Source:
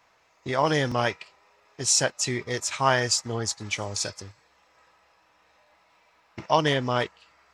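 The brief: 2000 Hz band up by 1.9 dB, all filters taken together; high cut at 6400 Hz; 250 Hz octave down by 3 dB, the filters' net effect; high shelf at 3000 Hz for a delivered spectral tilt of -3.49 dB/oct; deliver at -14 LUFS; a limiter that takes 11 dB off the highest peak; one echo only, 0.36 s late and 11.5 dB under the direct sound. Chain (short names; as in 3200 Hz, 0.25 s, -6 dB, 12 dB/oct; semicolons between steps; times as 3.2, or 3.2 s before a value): LPF 6400 Hz; bell 250 Hz -4 dB; bell 2000 Hz +4.5 dB; high shelf 3000 Hz -6.5 dB; limiter -18 dBFS; echo 0.36 s -11.5 dB; gain +16.5 dB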